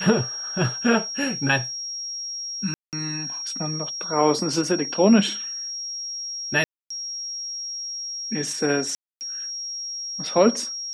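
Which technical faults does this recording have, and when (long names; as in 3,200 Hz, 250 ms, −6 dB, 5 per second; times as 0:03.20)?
whistle 5,600 Hz −29 dBFS
0:02.74–0:02.93: drop-out 188 ms
0:06.64–0:06.90: drop-out 264 ms
0:08.95–0:09.21: drop-out 259 ms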